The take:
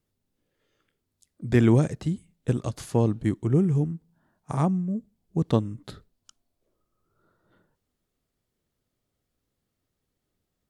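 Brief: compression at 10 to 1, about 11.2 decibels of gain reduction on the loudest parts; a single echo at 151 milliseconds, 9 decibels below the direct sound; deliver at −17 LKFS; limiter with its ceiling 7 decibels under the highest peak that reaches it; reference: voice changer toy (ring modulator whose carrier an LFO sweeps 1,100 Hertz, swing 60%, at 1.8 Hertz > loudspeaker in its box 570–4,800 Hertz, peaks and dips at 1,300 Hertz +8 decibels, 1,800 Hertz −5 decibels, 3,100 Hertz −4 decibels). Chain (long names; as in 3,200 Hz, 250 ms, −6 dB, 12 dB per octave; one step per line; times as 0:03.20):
downward compressor 10 to 1, threshold −26 dBFS
brickwall limiter −23.5 dBFS
single-tap delay 151 ms −9 dB
ring modulator whose carrier an LFO sweeps 1,100 Hz, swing 60%, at 1.8 Hz
loudspeaker in its box 570–4,800 Hz, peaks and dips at 1,300 Hz +8 dB, 1,800 Hz −5 dB, 3,100 Hz −4 dB
level +17.5 dB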